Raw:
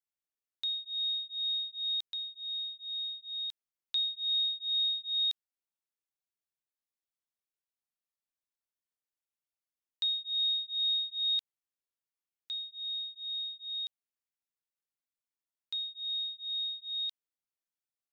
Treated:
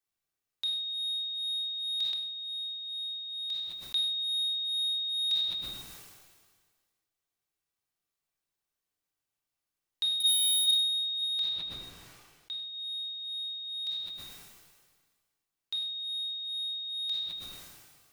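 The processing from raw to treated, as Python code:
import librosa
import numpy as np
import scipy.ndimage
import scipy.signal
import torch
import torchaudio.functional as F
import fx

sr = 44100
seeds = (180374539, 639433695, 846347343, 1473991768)

p1 = fx.leveller(x, sr, passes=5, at=(10.2, 10.71))
p2 = fx.lowpass(p1, sr, hz=3800.0, slope=6, at=(11.21, 12.73))
p3 = 10.0 ** (-32.0 / 20.0) * np.tanh(p2 / 10.0 ** (-32.0 / 20.0))
p4 = p2 + (p3 * librosa.db_to_amplitude(-7.0))
p5 = fx.room_shoebox(p4, sr, seeds[0], volume_m3=1900.0, walls='furnished', distance_m=3.6)
y = fx.sustainer(p5, sr, db_per_s=35.0)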